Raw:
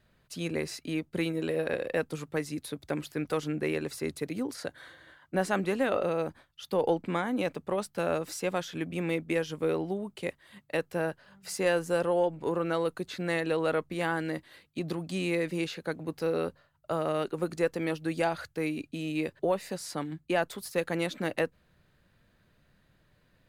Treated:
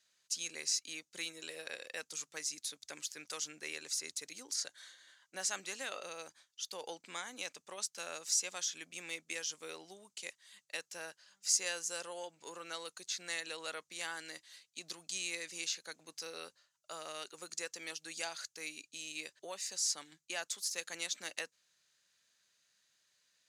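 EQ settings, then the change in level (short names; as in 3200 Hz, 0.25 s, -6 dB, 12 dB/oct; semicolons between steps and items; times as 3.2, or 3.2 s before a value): band-pass 6400 Hz, Q 3.2; +13.0 dB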